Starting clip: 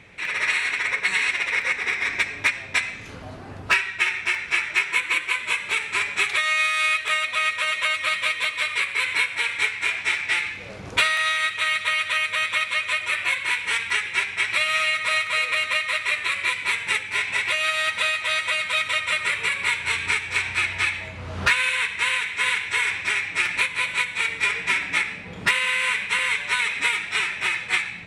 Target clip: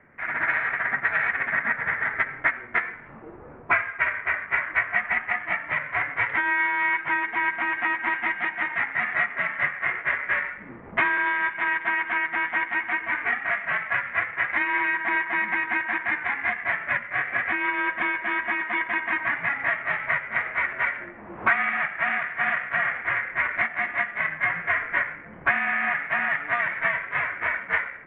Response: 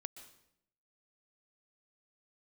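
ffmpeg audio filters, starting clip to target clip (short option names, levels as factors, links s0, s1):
-af "adynamicsmooth=sensitivity=3.5:basefreq=1700,highpass=f=400:t=q:w=0.5412,highpass=f=400:t=q:w=1.307,lowpass=f=2500:t=q:w=0.5176,lowpass=f=2500:t=q:w=0.7071,lowpass=f=2500:t=q:w=1.932,afreqshift=-290"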